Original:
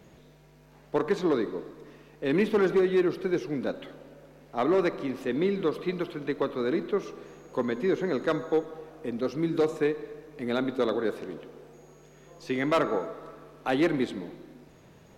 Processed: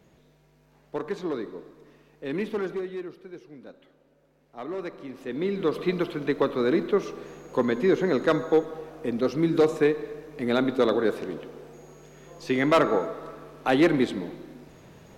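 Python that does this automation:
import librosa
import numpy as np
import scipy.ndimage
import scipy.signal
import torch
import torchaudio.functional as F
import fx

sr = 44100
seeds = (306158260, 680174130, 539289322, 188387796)

y = fx.gain(x, sr, db=fx.line((2.54, -5.0), (3.25, -15.0), (3.95, -15.0), (5.12, -7.0), (5.82, 4.5)))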